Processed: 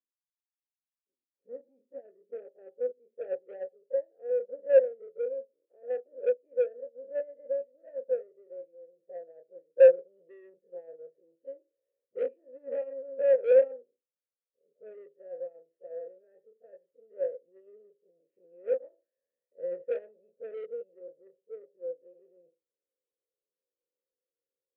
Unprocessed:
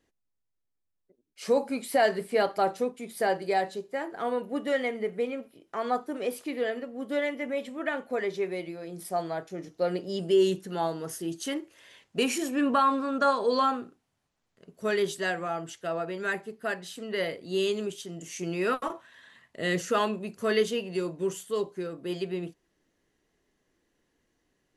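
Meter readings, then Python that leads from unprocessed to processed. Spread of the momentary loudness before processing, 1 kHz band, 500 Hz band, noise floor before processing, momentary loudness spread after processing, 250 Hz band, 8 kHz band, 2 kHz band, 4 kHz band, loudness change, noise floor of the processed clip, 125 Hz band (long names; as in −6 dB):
11 LU, below −25 dB, +0.5 dB, −79 dBFS, 24 LU, below −25 dB, below −35 dB, −17.0 dB, below −30 dB, 0.0 dB, below −85 dBFS, below −30 dB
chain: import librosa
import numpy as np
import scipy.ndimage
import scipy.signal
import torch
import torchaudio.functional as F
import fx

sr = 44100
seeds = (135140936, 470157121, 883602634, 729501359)

p1 = fx.spec_dilate(x, sr, span_ms=60)
p2 = fx.level_steps(p1, sr, step_db=12)
p3 = p1 + (p2 * 10.0 ** (-2.5 / 20.0))
p4 = fx.filter_sweep_lowpass(p3, sr, from_hz=240.0, to_hz=490.0, start_s=0.49, end_s=3.73, q=3.0)
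p5 = p4 + 10.0 ** (-20.5 / 20.0) * np.pad(p4, (int(87 * sr / 1000.0), 0))[:len(p4)]
p6 = 10.0 ** (-13.5 / 20.0) * np.tanh(p5 / 10.0 ** (-13.5 / 20.0))
p7 = fx.dynamic_eq(p6, sr, hz=320.0, q=2.1, threshold_db=-34.0, ratio=4.0, max_db=-6)
p8 = fx.vowel_filter(p7, sr, vowel='e')
p9 = fx.upward_expand(p8, sr, threshold_db=-37.0, expansion=2.5)
y = p9 * 10.0 ** (5.0 / 20.0)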